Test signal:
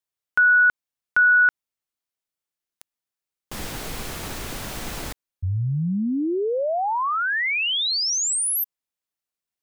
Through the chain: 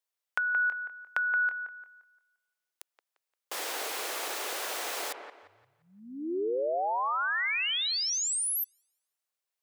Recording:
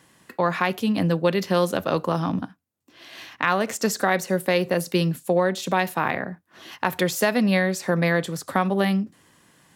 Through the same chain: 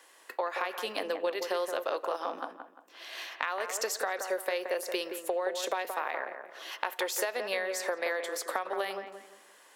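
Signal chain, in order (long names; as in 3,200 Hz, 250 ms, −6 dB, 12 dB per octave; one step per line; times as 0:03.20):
inverse Chebyshev high-pass filter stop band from 160 Hz, stop band 50 dB
downward compressor 8 to 1, threshold −29 dBFS
on a send: delay with a low-pass on its return 174 ms, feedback 33%, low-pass 2,000 Hz, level −6.5 dB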